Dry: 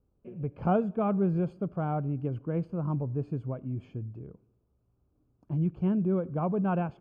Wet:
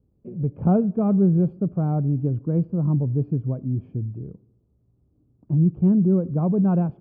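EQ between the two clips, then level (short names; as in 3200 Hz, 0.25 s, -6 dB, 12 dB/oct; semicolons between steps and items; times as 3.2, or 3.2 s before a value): band-pass 230 Hz, Q 0.54; low shelf 230 Hz +9 dB; +4.5 dB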